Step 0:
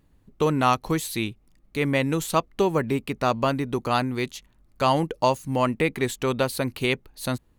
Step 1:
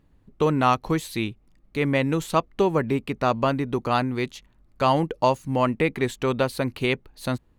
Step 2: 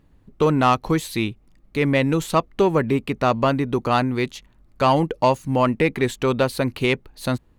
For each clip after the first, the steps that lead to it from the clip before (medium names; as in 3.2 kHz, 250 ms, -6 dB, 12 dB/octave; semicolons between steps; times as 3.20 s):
treble shelf 5.6 kHz -10 dB; trim +1 dB
saturation -10 dBFS, distortion -22 dB; trim +4 dB